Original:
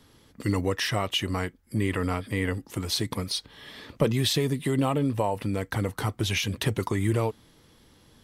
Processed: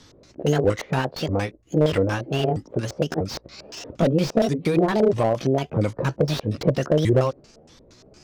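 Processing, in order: sawtooth pitch modulation +8.5 st, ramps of 641 ms; LFO low-pass square 4.3 Hz 560–6000 Hz; slew-rate limiter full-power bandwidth 59 Hz; trim +5.5 dB

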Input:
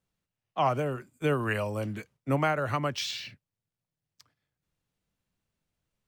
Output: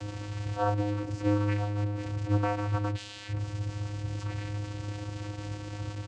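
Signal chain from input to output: one-bit delta coder 64 kbps, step -27.5 dBFS; comb 2.8 ms, depth 68%; vocoder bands 8, square 103 Hz

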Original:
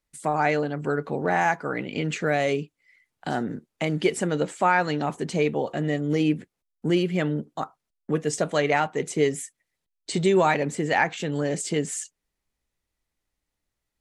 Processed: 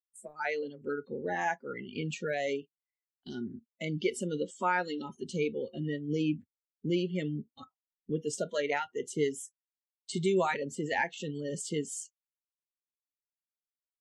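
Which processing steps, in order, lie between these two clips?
gate -43 dBFS, range -8 dB; spectral noise reduction 26 dB; trim -7.5 dB

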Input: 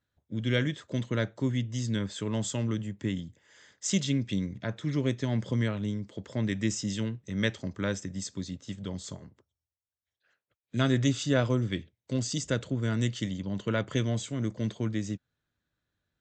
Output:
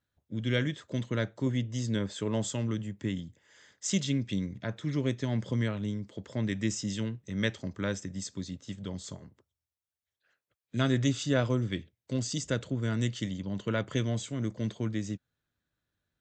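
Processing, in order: 1.46–2.54 s: dynamic bell 540 Hz, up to +5 dB, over -43 dBFS, Q 0.87; trim -1.5 dB

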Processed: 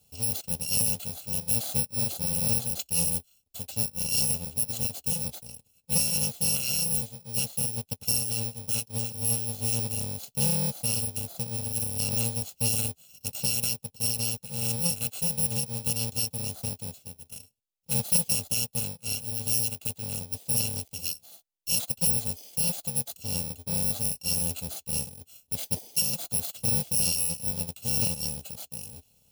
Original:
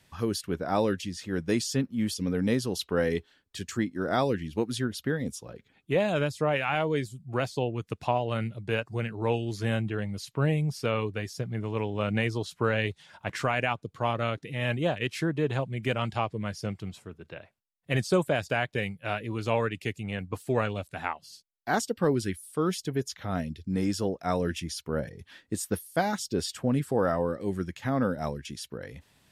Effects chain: bit-reversed sample order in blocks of 128 samples; high-order bell 1.5 kHz -13.5 dB 1.3 oct

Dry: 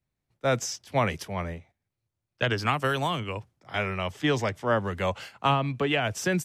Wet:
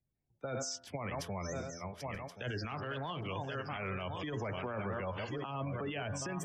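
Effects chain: backward echo that repeats 538 ms, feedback 55%, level -9 dB; spectral gate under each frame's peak -20 dB strong; de-hum 85.53 Hz, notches 22; compressor with a negative ratio -27 dBFS, ratio -0.5; on a send: thinning echo 930 ms, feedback 55%, level -24 dB; on the sum: peak limiter -26 dBFS, peak gain reduction 11 dB; 2.70–3.27 s: transformer saturation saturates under 310 Hz; trim -4 dB

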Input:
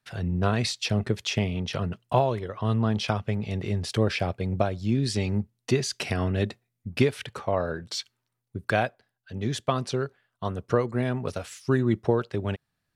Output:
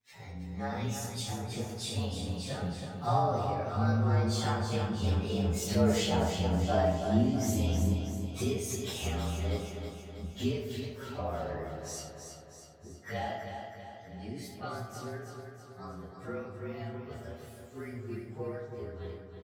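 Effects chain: frequency axis rescaled in octaves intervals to 112%; Doppler pass-by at 3.83 s, 15 m/s, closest 15 m; dynamic bell 1.9 kHz, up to -3 dB, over -60 dBFS, Q 5.7; in parallel at +1 dB: compression 20:1, threshold -41 dBFS, peak gain reduction 23 dB; on the sum: plain phase-vocoder stretch 1.5×; on a send: feedback delay 322 ms, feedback 54%, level -7 dB; on the sum: algorithmic reverb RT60 0.94 s, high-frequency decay 0.4×, pre-delay 15 ms, DRR 4.5 dB; trim +1.5 dB

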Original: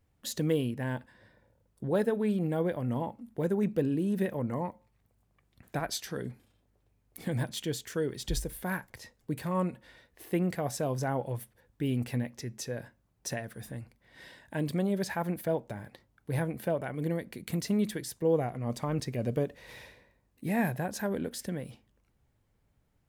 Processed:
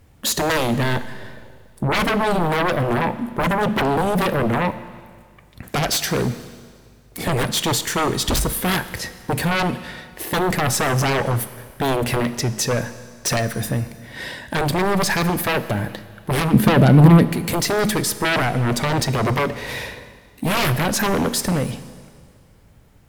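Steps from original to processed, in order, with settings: sine folder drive 16 dB, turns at -16 dBFS; 16.53–17.25 s: peaking EQ 180 Hz +14 dB 2.1 oct; Schroeder reverb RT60 1.9 s, combs from 26 ms, DRR 13 dB

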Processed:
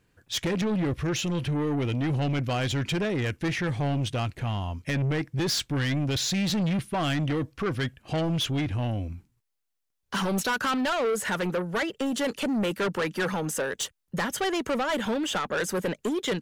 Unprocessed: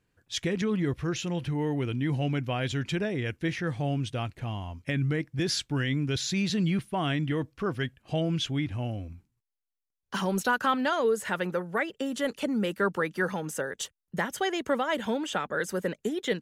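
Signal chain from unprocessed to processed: saturation -30 dBFS, distortion -9 dB; trim +7 dB

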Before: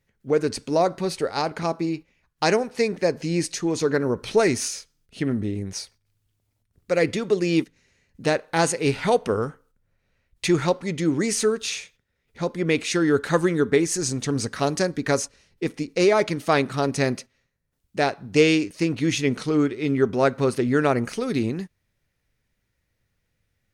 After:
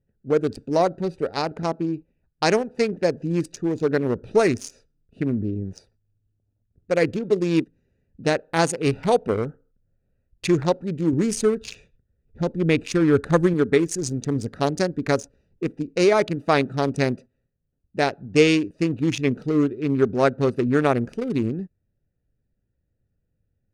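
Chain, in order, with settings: local Wiener filter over 41 samples; 11.13–13.54 s: bass shelf 120 Hz +11 dB; trim +1.5 dB

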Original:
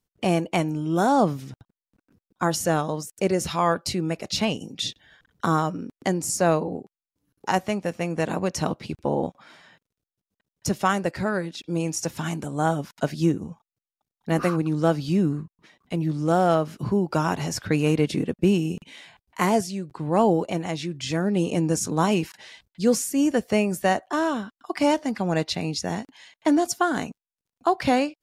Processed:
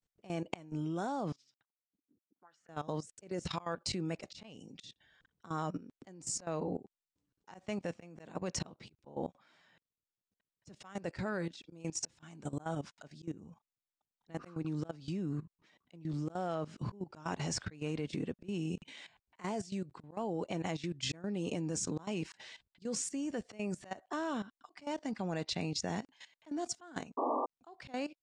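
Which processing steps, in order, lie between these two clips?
slow attack 309 ms; level held to a coarse grid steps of 16 dB; Chebyshev low-pass 8.3 kHz, order 4; 1.32–2.69 s: auto-wah 230–5000 Hz, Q 3.1, up, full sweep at -41.5 dBFS; 27.17–27.46 s: painted sound noise 230–1200 Hz -30 dBFS; trim -3 dB

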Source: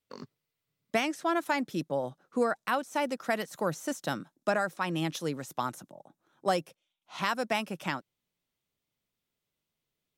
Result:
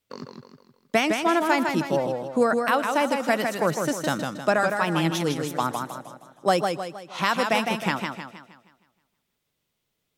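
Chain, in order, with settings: thinning echo 119 ms, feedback 33%, level -22 dB; modulated delay 157 ms, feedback 44%, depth 108 cents, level -5 dB; trim +6.5 dB

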